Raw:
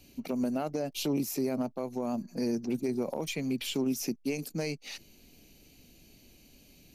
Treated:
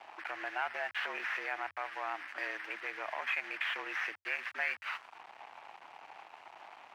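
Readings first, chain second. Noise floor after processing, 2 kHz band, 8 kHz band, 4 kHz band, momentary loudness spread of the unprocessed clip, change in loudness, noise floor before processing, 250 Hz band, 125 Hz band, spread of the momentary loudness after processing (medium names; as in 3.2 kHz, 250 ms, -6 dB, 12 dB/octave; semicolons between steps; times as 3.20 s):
-57 dBFS, +11.5 dB, under -20 dB, -4.5 dB, 5 LU, -4.0 dB, -59 dBFS, -26.0 dB, under -35 dB, 17 LU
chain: one-bit delta coder 32 kbps, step -42.5 dBFS; auto-wah 620–1700 Hz, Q 3.7, up, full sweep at -34 dBFS; treble shelf 3.6 kHz +6 dB; in parallel at +2 dB: peak limiter -45 dBFS, peak gain reduction 9.5 dB; on the sum: crossover distortion -59 dBFS; frequency shift +88 Hz; high-order bell 1.4 kHz +12.5 dB 2.5 oct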